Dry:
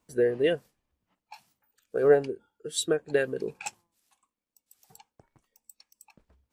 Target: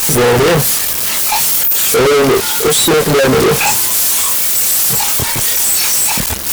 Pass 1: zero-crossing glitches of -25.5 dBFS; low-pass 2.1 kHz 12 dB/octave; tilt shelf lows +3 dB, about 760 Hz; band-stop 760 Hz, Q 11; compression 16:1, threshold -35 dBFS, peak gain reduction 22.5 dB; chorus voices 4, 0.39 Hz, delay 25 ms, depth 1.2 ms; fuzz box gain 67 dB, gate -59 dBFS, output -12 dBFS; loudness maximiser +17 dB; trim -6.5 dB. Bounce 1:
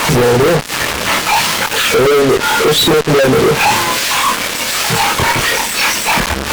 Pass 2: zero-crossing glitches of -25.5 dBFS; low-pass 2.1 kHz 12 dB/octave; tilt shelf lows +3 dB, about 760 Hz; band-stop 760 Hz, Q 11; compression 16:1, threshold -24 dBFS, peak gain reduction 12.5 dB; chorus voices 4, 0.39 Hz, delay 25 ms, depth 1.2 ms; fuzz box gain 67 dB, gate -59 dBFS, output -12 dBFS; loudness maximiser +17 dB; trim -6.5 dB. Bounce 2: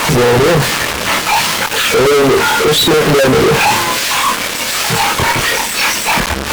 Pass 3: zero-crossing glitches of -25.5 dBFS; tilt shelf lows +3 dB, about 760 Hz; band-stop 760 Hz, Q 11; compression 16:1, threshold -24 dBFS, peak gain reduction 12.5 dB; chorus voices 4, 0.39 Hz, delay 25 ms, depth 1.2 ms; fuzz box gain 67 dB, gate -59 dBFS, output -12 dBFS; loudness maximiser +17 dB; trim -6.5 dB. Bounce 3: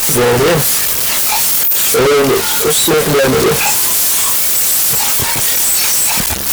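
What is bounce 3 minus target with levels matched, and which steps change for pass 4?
zero-crossing glitches: distortion +8 dB
change: zero-crossing glitches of -33.5 dBFS

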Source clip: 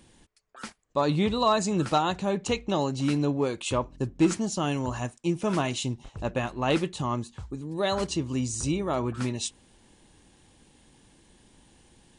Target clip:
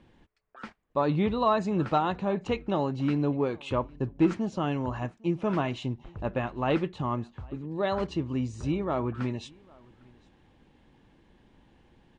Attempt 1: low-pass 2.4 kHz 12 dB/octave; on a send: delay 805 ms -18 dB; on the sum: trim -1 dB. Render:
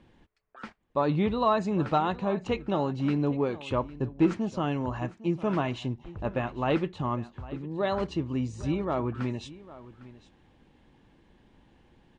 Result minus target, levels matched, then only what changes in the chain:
echo-to-direct +8.5 dB
change: delay 805 ms -26.5 dB

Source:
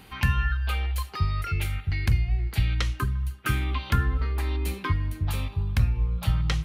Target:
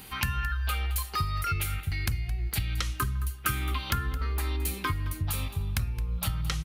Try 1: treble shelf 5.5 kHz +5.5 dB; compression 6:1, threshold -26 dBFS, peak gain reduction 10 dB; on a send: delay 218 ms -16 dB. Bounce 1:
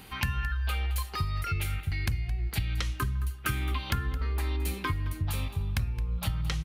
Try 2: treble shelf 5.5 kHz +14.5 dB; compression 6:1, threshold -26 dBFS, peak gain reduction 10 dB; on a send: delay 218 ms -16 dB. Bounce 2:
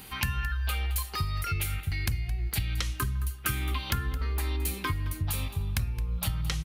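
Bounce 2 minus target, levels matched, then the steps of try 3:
1 kHz band -3.0 dB
treble shelf 5.5 kHz +14.5 dB; compression 6:1, threshold -26 dBFS, peak gain reduction 10 dB; dynamic bell 1.3 kHz, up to +6 dB, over -51 dBFS, Q 4.2; on a send: delay 218 ms -16 dB

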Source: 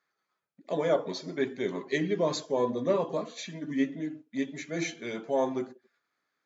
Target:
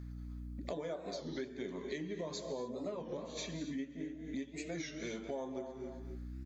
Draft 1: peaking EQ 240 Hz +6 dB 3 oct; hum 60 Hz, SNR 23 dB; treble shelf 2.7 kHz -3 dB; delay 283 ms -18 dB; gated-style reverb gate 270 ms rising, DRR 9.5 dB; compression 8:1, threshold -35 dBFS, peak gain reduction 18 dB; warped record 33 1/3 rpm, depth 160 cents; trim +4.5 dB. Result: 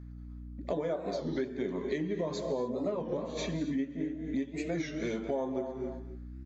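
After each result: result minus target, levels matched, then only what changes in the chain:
compression: peak gain reduction -8 dB; 4 kHz band -6.0 dB
change: compression 8:1, threshold -44 dBFS, peak gain reduction 26 dB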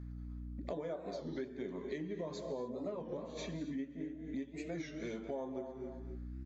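4 kHz band -6.0 dB
change: treble shelf 2.7 kHz +8.5 dB

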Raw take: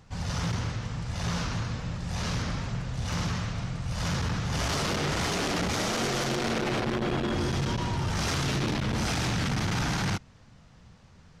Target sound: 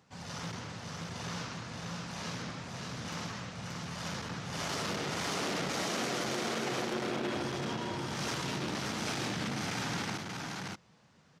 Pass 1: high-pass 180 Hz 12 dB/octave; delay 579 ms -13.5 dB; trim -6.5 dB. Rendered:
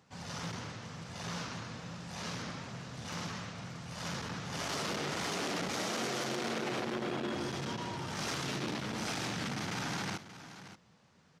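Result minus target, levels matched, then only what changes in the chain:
echo-to-direct -10.5 dB
change: delay 579 ms -3 dB

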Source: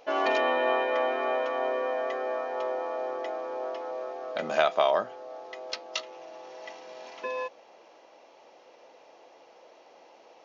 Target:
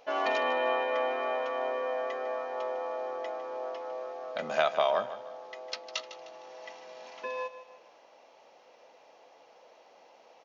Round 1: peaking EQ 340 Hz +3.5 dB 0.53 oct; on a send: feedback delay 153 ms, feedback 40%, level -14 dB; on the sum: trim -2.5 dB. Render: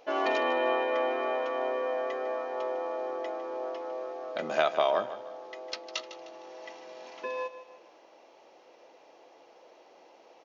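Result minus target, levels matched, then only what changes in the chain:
250 Hz band +5.5 dB
change: peaking EQ 340 Hz -6.5 dB 0.53 oct

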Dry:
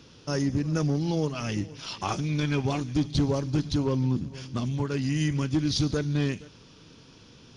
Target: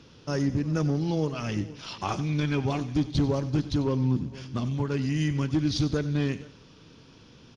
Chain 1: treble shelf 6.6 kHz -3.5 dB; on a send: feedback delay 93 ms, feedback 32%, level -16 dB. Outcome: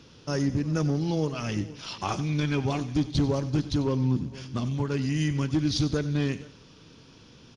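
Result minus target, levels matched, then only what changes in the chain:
8 kHz band +3.0 dB
change: treble shelf 6.6 kHz -10 dB

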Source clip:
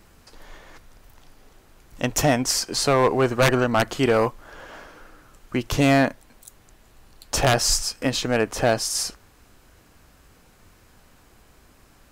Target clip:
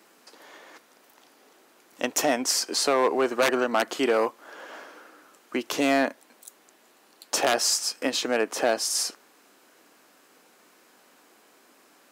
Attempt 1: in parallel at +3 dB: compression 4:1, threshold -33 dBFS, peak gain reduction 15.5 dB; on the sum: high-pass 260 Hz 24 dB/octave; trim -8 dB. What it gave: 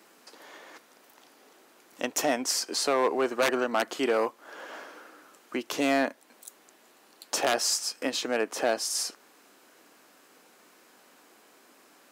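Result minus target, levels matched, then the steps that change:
compression: peak gain reduction +9 dB
change: compression 4:1, threshold -21 dBFS, peak gain reduction 6.5 dB

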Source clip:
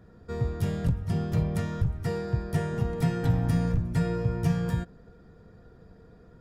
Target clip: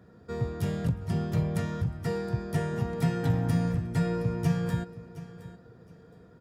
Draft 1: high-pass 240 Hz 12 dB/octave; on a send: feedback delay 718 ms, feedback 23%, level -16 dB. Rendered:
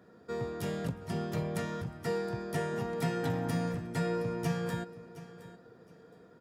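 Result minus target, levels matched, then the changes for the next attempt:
125 Hz band -3.5 dB
change: high-pass 100 Hz 12 dB/octave

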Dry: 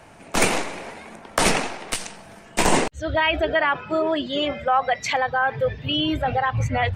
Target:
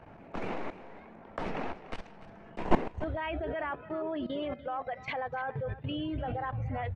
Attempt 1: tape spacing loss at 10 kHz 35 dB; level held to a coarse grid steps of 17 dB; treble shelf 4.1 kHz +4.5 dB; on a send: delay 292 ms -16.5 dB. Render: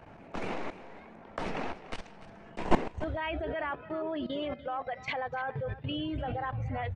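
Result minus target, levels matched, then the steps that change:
8 kHz band +7.0 dB
change: treble shelf 4.1 kHz -5.5 dB

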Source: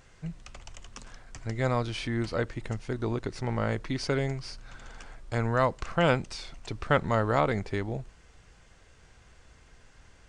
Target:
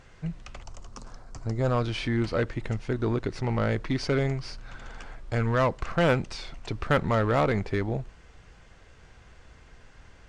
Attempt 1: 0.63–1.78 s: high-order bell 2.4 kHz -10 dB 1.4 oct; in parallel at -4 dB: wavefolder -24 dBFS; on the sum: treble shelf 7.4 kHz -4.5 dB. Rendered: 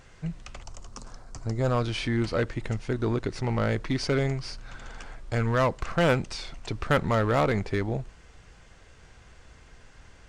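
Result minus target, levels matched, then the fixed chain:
8 kHz band +4.0 dB
0.63–1.78 s: high-order bell 2.4 kHz -10 dB 1.4 oct; in parallel at -4 dB: wavefolder -24 dBFS; on the sum: treble shelf 7.4 kHz -13.5 dB

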